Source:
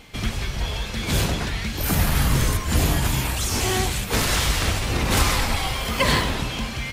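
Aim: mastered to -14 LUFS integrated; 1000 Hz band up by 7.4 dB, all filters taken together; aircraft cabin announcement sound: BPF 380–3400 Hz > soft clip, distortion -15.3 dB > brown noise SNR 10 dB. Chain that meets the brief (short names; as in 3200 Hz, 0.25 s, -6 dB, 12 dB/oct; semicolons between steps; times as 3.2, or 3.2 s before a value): BPF 380–3400 Hz; bell 1000 Hz +9 dB; soft clip -15 dBFS; brown noise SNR 10 dB; gain +11 dB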